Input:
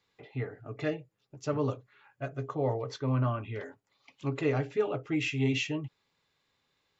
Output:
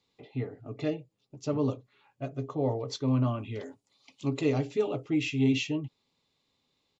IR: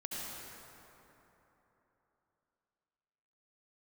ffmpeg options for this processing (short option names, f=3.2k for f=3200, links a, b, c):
-filter_complex "[0:a]asettb=1/sr,asplit=3[a][b][c];[a]atrim=end=2.884[d];[b]atrim=start=2.88:end=5.05,asetpts=PTS-STARTPTS,afade=t=in:d=0.004:c=qsin,afade=t=out:st=2.166:d=0.004:c=qsin,aemphasis=mode=production:type=50kf[e];[c]atrim=start=5.046[f];[d][e]acrossfade=d=0.004:c1=hsin:c2=qsin[g];[g][f]acrossfade=d=0.004:c1=qsin:c2=hsin,aresample=22050,aresample=44100,equalizer=f=250:t=o:w=0.67:g=6,equalizer=f=1.6k:t=o:w=0.67:g=-11,equalizer=f=4k:t=o:w=0.67:g=3"